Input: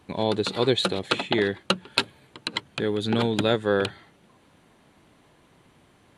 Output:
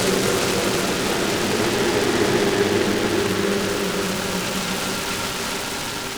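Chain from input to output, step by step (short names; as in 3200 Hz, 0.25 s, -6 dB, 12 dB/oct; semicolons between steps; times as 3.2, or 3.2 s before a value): hard clip -17 dBFS, distortion -12 dB; Paulstretch 4.7×, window 1.00 s, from 0.88; noise-modulated delay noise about 1300 Hz, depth 0.1 ms; gain +6.5 dB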